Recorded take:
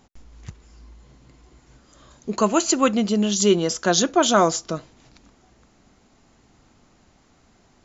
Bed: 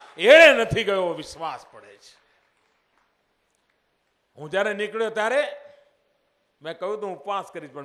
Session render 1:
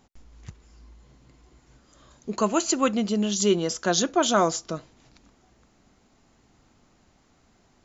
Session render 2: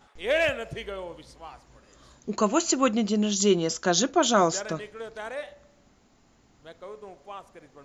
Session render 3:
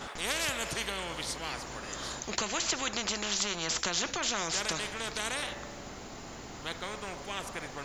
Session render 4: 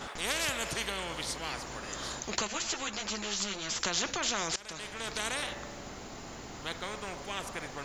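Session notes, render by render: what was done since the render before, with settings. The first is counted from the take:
gain -4 dB
add bed -13 dB
compressor, threshold -24 dBFS, peak gain reduction 8.5 dB; spectral compressor 4:1
2.47–3.81 ensemble effect; 4.56–5.14 fade in, from -21 dB

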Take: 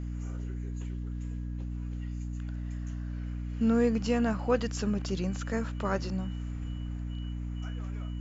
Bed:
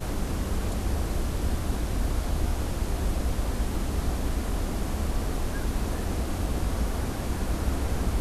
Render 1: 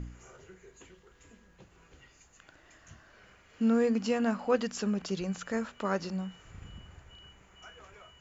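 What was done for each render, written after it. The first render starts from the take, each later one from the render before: de-hum 60 Hz, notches 5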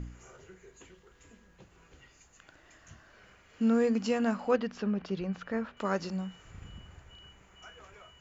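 4.56–5.77 air absorption 230 m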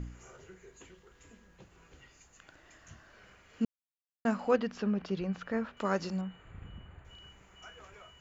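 3.65–4.25 mute; 6.21–7.05 running mean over 8 samples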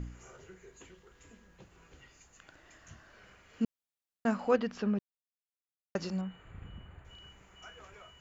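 4.99–5.95 mute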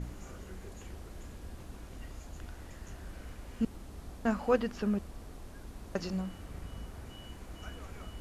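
add bed -18.5 dB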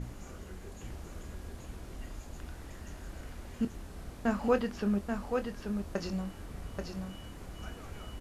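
doubler 25 ms -11 dB; echo 0.833 s -5 dB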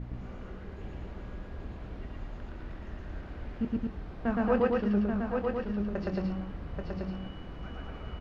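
air absorption 300 m; loudspeakers at several distances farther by 40 m 0 dB, 76 m -3 dB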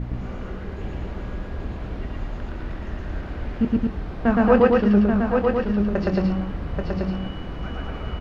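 gain +10.5 dB

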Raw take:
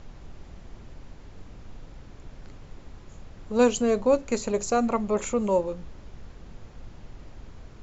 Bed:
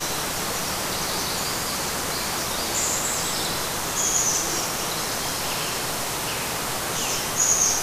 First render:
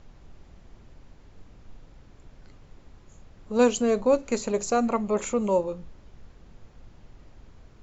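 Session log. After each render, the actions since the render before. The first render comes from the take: noise print and reduce 6 dB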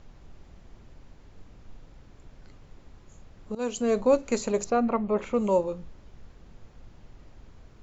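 3.55–3.97 fade in linear, from -21 dB; 4.64–5.34 air absorption 250 m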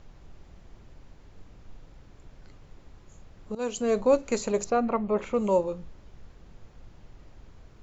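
bell 240 Hz -3 dB 0.22 oct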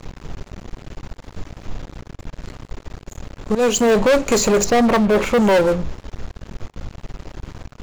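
sample leveller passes 5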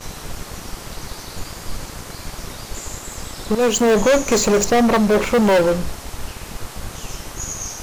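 add bed -9.5 dB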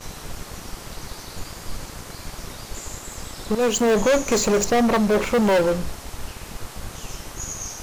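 gain -3.5 dB

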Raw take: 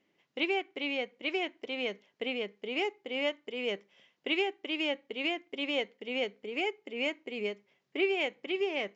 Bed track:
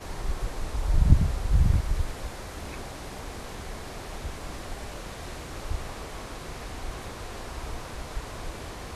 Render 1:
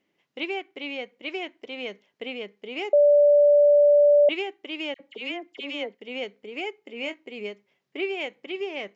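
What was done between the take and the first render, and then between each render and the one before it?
2.93–4.29 bleep 583 Hz -13 dBFS; 4.94–5.95 dispersion lows, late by 58 ms, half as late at 1600 Hz; 6.85–7.28 doubler 22 ms -10.5 dB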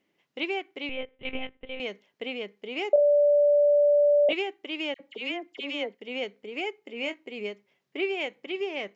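0.89–1.8 monotone LPC vocoder at 8 kHz 260 Hz; 2.94–4.33 flutter echo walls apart 3.1 m, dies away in 0.22 s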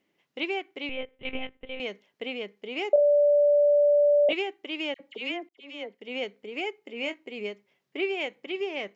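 5.49–6.15 fade in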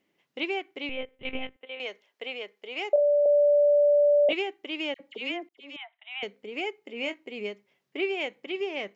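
1.56–3.26 HPF 480 Hz; 5.76–6.23 brick-wall FIR band-pass 630–4000 Hz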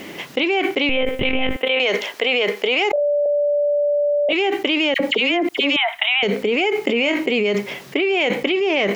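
fast leveller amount 100%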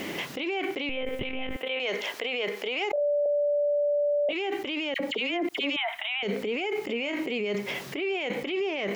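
compressor, threshold -24 dBFS, peak gain reduction 10 dB; limiter -21 dBFS, peak gain reduction 10.5 dB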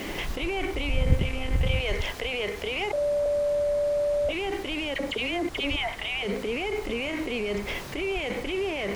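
add bed track -4 dB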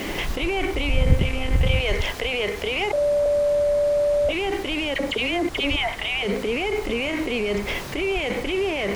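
gain +5 dB; limiter -3 dBFS, peak gain reduction 1.5 dB

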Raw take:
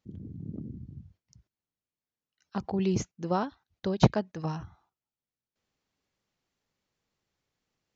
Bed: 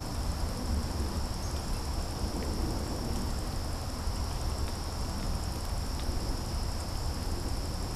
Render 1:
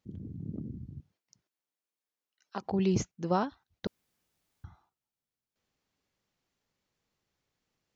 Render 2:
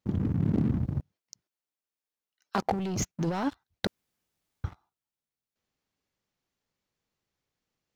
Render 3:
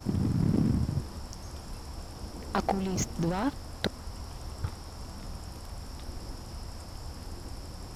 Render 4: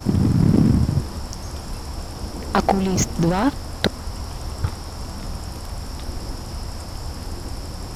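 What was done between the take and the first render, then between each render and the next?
1–2.66 HPF 340 Hz; 3.87–4.64 room tone
sample leveller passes 3; negative-ratio compressor -27 dBFS, ratio -1
add bed -7.5 dB
gain +10.5 dB

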